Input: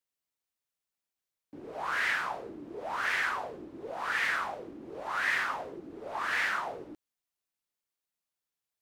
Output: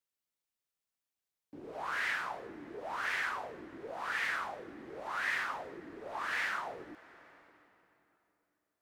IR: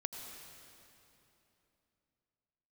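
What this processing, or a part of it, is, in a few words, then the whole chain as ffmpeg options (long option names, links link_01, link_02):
compressed reverb return: -filter_complex "[0:a]asplit=2[link_01][link_02];[1:a]atrim=start_sample=2205[link_03];[link_02][link_03]afir=irnorm=-1:irlink=0,acompressor=threshold=-42dB:ratio=6,volume=-5dB[link_04];[link_01][link_04]amix=inputs=2:normalize=0,volume=-5.5dB"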